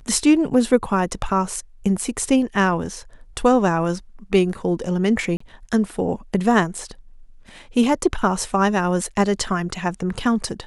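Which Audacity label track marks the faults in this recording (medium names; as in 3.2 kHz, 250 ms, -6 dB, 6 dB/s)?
5.370000	5.400000	dropout 34 ms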